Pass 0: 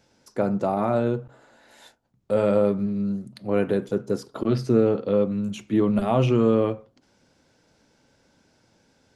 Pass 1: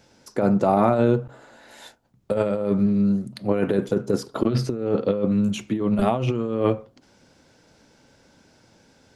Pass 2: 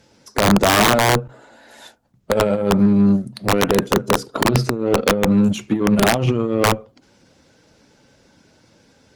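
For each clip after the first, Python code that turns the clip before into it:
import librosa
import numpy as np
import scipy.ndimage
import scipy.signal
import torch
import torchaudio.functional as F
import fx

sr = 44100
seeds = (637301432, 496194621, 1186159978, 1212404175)

y1 = fx.over_compress(x, sr, threshold_db=-23.0, ratio=-0.5)
y1 = y1 * 10.0 ** (3.5 / 20.0)
y2 = fx.spec_quant(y1, sr, step_db=15)
y2 = (np.mod(10.0 ** (12.5 / 20.0) * y2 + 1.0, 2.0) - 1.0) / 10.0 ** (12.5 / 20.0)
y2 = fx.cheby_harmonics(y2, sr, harmonics=(7,), levels_db=(-27,), full_scale_db=-12.5)
y2 = y2 * 10.0 ** (6.0 / 20.0)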